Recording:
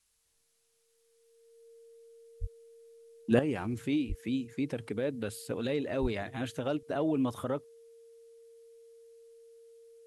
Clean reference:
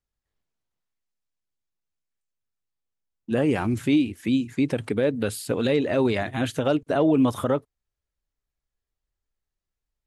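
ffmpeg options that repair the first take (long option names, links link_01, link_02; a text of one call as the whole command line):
ffmpeg -i in.wav -filter_complex "[0:a]bandreject=frequency=460:width=30,asplit=3[link_01][link_02][link_03];[link_01]afade=type=out:start_time=2.4:duration=0.02[link_04];[link_02]highpass=frequency=140:width=0.5412,highpass=frequency=140:width=1.3066,afade=type=in:start_time=2.4:duration=0.02,afade=type=out:start_time=2.52:duration=0.02[link_05];[link_03]afade=type=in:start_time=2.52:duration=0.02[link_06];[link_04][link_05][link_06]amix=inputs=3:normalize=0,asplit=3[link_07][link_08][link_09];[link_07]afade=type=out:start_time=4.08:duration=0.02[link_10];[link_08]highpass=frequency=140:width=0.5412,highpass=frequency=140:width=1.3066,afade=type=in:start_time=4.08:duration=0.02,afade=type=out:start_time=4.2:duration=0.02[link_11];[link_09]afade=type=in:start_time=4.2:duration=0.02[link_12];[link_10][link_11][link_12]amix=inputs=3:normalize=0,asplit=3[link_13][link_14][link_15];[link_13]afade=type=out:start_time=6.01:duration=0.02[link_16];[link_14]highpass=frequency=140:width=0.5412,highpass=frequency=140:width=1.3066,afade=type=in:start_time=6.01:duration=0.02,afade=type=out:start_time=6.13:duration=0.02[link_17];[link_15]afade=type=in:start_time=6.13:duration=0.02[link_18];[link_16][link_17][link_18]amix=inputs=3:normalize=0,agate=range=-21dB:threshold=-63dB,asetnsamples=nb_out_samples=441:pad=0,asendcmd='3.39 volume volume 10dB',volume=0dB" out.wav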